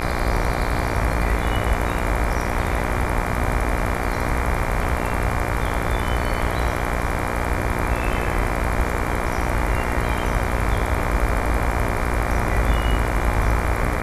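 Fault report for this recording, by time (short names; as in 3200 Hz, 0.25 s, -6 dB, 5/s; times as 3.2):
buzz 60 Hz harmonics 40 -26 dBFS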